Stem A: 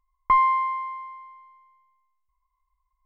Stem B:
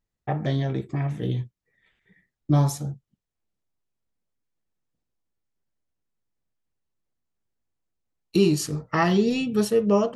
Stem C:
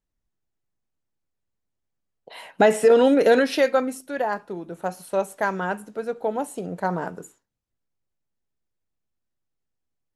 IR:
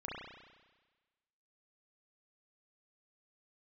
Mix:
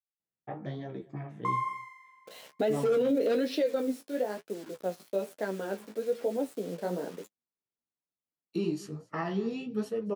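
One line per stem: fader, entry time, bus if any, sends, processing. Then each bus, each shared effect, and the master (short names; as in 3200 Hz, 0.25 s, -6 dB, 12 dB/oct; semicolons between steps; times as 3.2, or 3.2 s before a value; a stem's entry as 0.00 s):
-7.5 dB, 1.15 s, no send, echo send -12 dB, median filter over 9 samples; auto duck -11 dB, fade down 0.50 s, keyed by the third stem
-6.0 dB, 0.20 s, no send, echo send -22.5 dB, high shelf 3100 Hz -11.5 dB
-10.0 dB, 0.00 s, no send, no echo send, ten-band EQ 250 Hz +9 dB, 500 Hz +12 dB, 1000 Hz -9 dB, 4000 Hz +9 dB, 8000 Hz -4 dB; requantised 6-bit, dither none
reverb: off
echo: echo 0.231 s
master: HPF 160 Hz 12 dB/oct; flange 1.1 Hz, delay 9.2 ms, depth 9.9 ms, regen +24%; limiter -20 dBFS, peak gain reduction 11 dB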